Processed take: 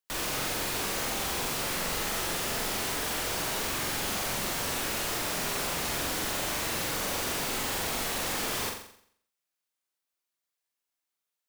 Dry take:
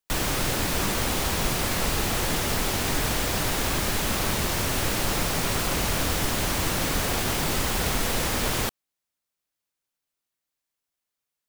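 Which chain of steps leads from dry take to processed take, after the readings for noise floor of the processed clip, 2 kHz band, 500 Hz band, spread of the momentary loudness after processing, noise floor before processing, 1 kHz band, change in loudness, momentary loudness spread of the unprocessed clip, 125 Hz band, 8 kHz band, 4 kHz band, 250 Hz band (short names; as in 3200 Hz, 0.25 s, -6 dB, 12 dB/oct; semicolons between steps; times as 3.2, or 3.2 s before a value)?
under -85 dBFS, -4.0 dB, -5.5 dB, 0 LU, under -85 dBFS, -4.5 dB, -4.5 dB, 0 LU, -12.5 dB, -3.5 dB, -4.0 dB, -8.5 dB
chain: low shelf 180 Hz -11.5 dB; hard clip -27 dBFS, distortion -10 dB; on a send: flutter echo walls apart 7.5 m, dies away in 0.63 s; on the sum: gain -3.5 dB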